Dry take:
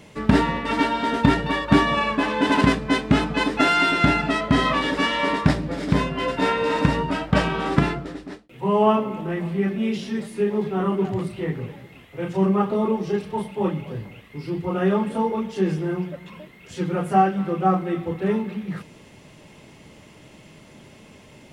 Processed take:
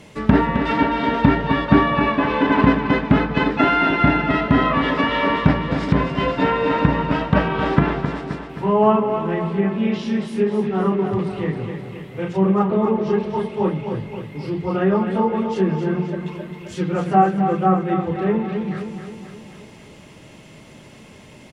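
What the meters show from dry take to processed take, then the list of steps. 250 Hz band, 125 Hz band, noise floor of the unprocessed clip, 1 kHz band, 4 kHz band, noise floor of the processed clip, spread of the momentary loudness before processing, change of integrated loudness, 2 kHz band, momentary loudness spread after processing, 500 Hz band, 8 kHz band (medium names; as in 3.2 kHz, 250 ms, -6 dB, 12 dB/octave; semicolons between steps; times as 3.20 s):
+3.5 dB, +3.5 dB, -49 dBFS, +3.0 dB, -2.5 dB, -44 dBFS, 13 LU, +3.0 dB, +1.5 dB, 12 LU, +3.5 dB, no reading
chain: low-pass that closes with the level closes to 2.1 kHz, closed at -17 dBFS; on a send: feedback delay 263 ms, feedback 55%, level -8 dB; on the sum: trim +2.5 dB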